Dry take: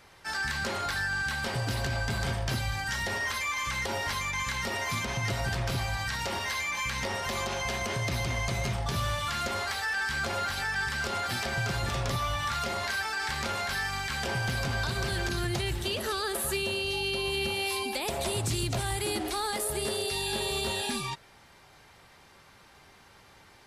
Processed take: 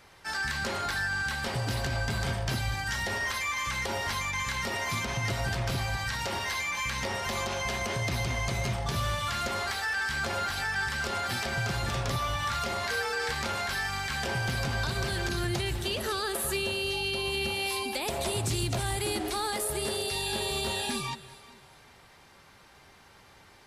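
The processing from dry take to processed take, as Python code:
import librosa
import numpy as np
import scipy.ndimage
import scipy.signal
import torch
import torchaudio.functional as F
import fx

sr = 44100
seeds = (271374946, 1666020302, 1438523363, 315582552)

y = fx.echo_alternate(x, sr, ms=197, hz=940.0, feedback_pct=55, wet_db=-14)
y = fx.dmg_tone(y, sr, hz=470.0, level_db=-34.0, at=(12.9, 13.31), fade=0.02)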